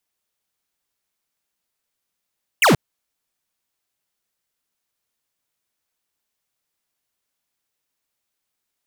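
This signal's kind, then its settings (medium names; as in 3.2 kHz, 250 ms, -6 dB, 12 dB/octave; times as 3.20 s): laser zap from 3.1 kHz, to 110 Hz, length 0.13 s square, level -13 dB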